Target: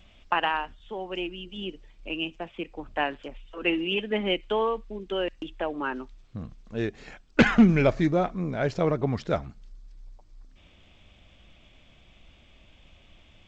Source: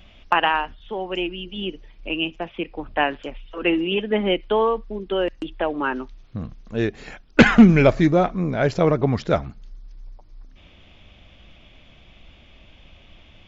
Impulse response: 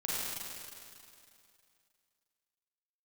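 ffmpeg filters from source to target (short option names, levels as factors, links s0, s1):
-filter_complex "[0:a]asettb=1/sr,asplit=3[s0][s1][s2];[s0]atrim=end=3.284[s3];[s1]atrim=start=3.28:end=5.6,asetpts=PTS-STARTPTS,afade=t=in:d=0.004:c=qsin,afade=t=out:st=2.316:d=0.004:c=qsin,adynamicequalizer=threshold=0.0112:dfrequency=2600:dqfactor=1.4:tfrequency=2600:tqfactor=1.4:attack=5:release=100:ratio=0.375:range=2.5:mode=boostabove:tftype=bell[s4];[s2]atrim=start=5.596[s5];[s3][s4]acrossfade=d=0.004:c1=hsin:c2=qsin[s6];[s6][s5]acrossfade=d=0.004:c1=qsin:c2=hsin,volume=0.473" -ar 16000 -c:a g722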